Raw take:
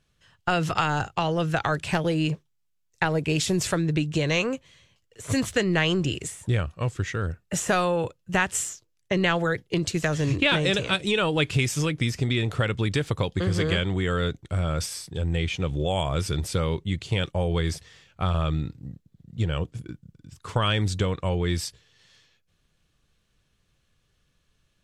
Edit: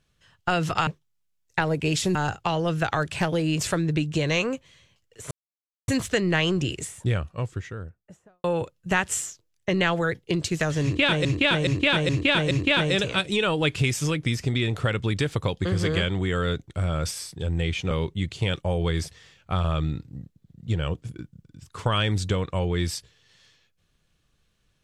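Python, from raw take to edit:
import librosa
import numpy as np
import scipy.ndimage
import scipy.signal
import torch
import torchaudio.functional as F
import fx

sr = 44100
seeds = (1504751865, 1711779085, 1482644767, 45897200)

y = fx.studio_fade_out(x, sr, start_s=6.42, length_s=1.45)
y = fx.edit(y, sr, fx.move(start_s=2.31, length_s=1.28, to_s=0.87),
    fx.insert_silence(at_s=5.31, length_s=0.57),
    fx.repeat(start_s=10.26, length_s=0.42, count=5),
    fx.cut(start_s=15.66, length_s=0.95), tone=tone)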